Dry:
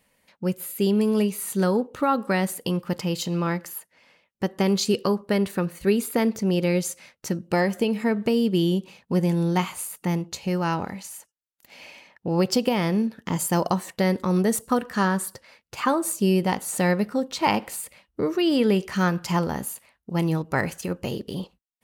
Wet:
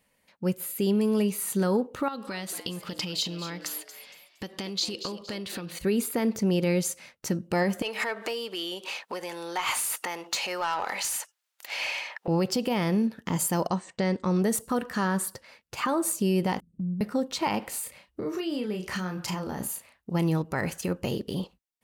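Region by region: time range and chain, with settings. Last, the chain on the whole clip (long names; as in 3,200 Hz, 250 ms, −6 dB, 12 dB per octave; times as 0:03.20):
0:02.08–0:05.79: downward compressor 12 to 1, threshold −32 dBFS + parametric band 3,900 Hz +13.5 dB 1.5 octaves + echo with shifted repeats 232 ms, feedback 35%, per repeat +130 Hz, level −13 dB
0:07.82–0:12.28: downward compressor 16 to 1, threshold −31 dBFS + high-pass filter 570 Hz + mid-hump overdrive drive 22 dB, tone 5,800 Hz, clips at −16 dBFS
0:13.67–0:14.42: Butterworth low-pass 9,000 Hz 96 dB per octave + expander for the loud parts, over −34 dBFS
0:16.60–0:17.01: inverse Chebyshev low-pass filter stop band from 890 Hz, stop band 70 dB + downward compressor 2.5 to 1, threshold −29 dBFS
0:17.71–0:20.12: downward compressor 16 to 1, threshold −28 dBFS + double-tracking delay 33 ms −5 dB
whole clip: automatic gain control gain up to 4 dB; brickwall limiter −13 dBFS; level −4 dB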